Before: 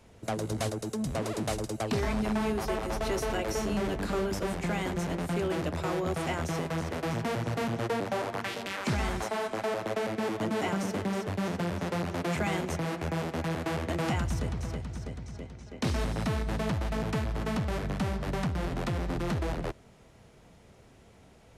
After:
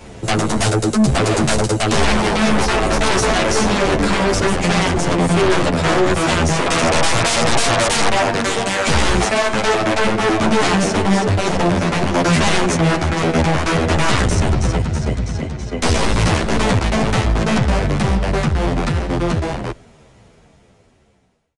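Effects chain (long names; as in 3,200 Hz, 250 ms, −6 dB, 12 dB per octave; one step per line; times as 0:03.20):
fade-out on the ending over 5.14 s
0:06.66–0:08.09: flat-topped bell 850 Hz +12.5 dB
harmonic generator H 6 −12 dB, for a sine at −9.5 dBFS
sine wavefolder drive 19 dB, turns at −9 dBFS
downsampling to 22,050 Hz
barber-pole flanger 10.6 ms −2 Hz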